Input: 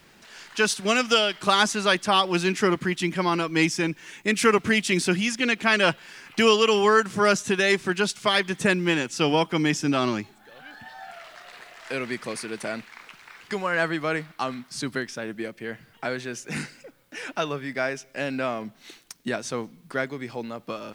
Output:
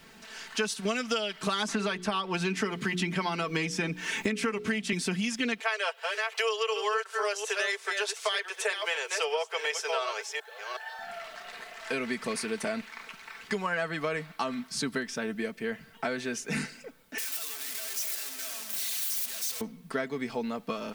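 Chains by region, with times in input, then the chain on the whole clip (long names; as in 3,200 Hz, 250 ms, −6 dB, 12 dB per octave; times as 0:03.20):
0:01.68–0:04.93: high-shelf EQ 5,500 Hz −6.5 dB + mains-hum notches 60/120/180/240/300/360/420/480 Hz + multiband upward and downward compressor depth 100%
0:05.60–0:10.99: delay that plays each chunk backwards 369 ms, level −9 dB + Butterworth high-pass 430 Hz 72 dB per octave
0:17.18–0:19.61: sign of each sample alone + first difference + echo whose low-pass opens from repeat to repeat 106 ms, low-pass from 200 Hz, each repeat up 2 octaves, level −3 dB
whole clip: comb filter 4.5 ms, depth 57%; downward compressor 6 to 1, threshold −27 dBFS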